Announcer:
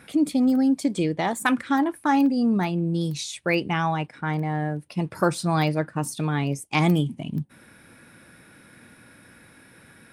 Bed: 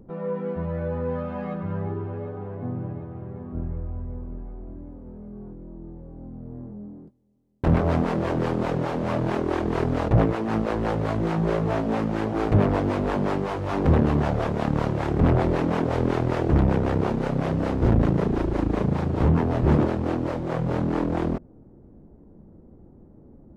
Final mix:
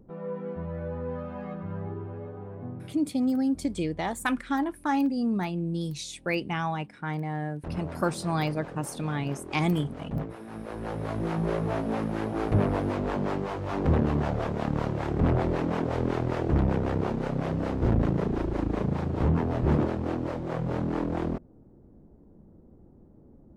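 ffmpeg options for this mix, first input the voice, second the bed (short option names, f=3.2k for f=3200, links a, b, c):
-filter_complex "[0:a]adelay=2800,volume=-5.5dB[a];[1:a]volume=5.5dB,afade=t=out:st=2.6:d=0.42:silence=0.316228,afade=t=in:st=10.54:d=0.78:silence=0.266073[b];[a][b]amix=inputs=2:normalize=0"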